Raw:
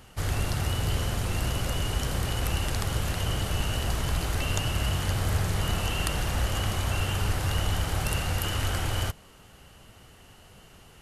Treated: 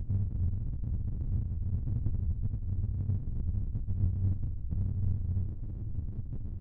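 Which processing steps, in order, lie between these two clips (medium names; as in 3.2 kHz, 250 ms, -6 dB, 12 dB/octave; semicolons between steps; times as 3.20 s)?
RIAA curve playback; spectral gate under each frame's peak -15 dB strong; peaking EQ 240 Hz +7.5 dB 1.2 oct; compressor with a negative ratio -23 dBFS, ratio -1; flange 0.95 Hz, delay 8.7 ms, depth 2.3 ms, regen +5%; plain phase-vocoder stretch 0.6×; feedback delay 131 ms, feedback 49%, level -17.5 dB; sliding maximum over 65 samples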